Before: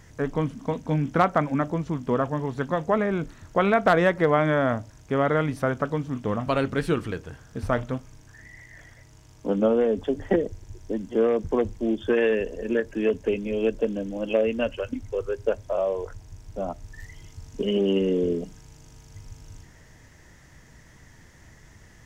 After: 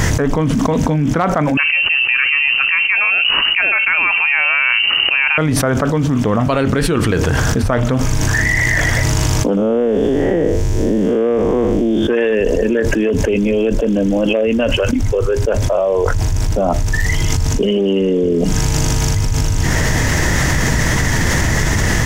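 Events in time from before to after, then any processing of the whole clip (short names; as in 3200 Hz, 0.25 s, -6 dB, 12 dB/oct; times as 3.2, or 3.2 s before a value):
1.57–5.38 inverted band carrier 2900 Hz
9.57–12.08 time blur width 0.176 s
whole clip: fast leveller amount 100%; gain +1.5 dB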